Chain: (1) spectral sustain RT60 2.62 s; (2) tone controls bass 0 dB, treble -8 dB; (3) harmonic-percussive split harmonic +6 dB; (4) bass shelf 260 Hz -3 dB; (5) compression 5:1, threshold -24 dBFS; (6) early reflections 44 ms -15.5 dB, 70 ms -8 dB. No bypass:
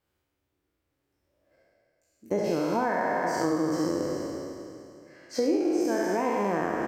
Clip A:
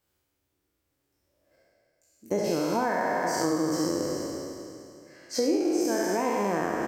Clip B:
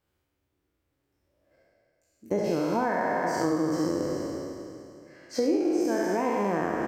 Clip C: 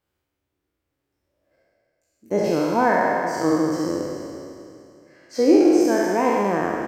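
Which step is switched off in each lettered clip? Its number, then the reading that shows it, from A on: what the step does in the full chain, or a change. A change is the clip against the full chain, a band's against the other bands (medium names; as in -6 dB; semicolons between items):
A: 2, 8 kHz band +7.0 dB; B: 4, 125 Hz band +2.0 dB; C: 5, crest factor change +3.0 dB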